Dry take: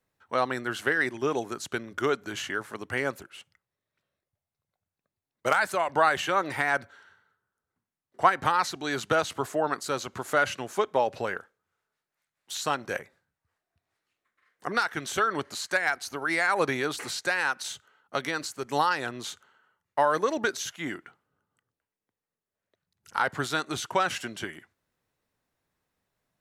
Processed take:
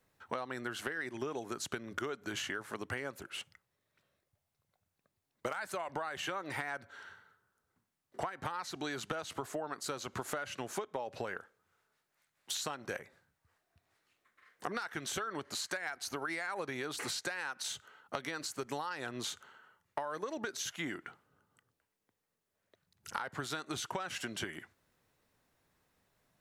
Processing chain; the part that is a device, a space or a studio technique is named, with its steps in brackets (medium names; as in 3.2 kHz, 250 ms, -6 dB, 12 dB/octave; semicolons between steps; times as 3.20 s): serial compression, leveller first (compression 2.5:1, threshold -28 dBFS, peak gain reduction 9.5 dB; compression 6:1, threshold -41 dBFS, peak gain reduction 17.5 dB); trim +5 dB